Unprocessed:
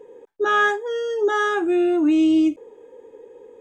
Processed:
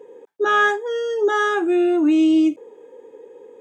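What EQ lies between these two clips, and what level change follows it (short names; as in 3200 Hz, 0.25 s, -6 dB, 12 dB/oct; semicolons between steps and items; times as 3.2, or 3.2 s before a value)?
HPF 150 Hz 12 dB/oct; +1.5 dB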